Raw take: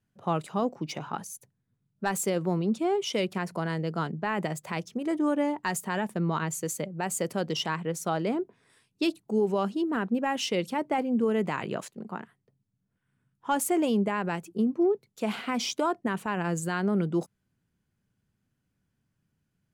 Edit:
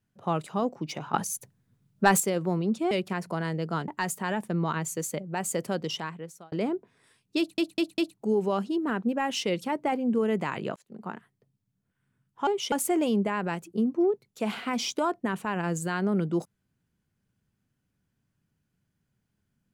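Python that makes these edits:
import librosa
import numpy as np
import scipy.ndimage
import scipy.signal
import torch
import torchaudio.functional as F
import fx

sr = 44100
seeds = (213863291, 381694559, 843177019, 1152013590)

y = fx.edit(x, sr, fx.clip_gain(start_s=1.14, length_s=1.06, db=8.5),
    fx.move(start_s=2.91, length_s=0.25, to_s=13.53),
    fx.cut(start_s=4.13, length_s=1.41),
    fx.fade_out_span(start_s=7.38, length_s=0.8),
    fx.stutter(start_s=9.04, slice_s=0.2, count=4),
    fx.fade_in_span(start_s=11.82, length_s=0.31), tone=tone)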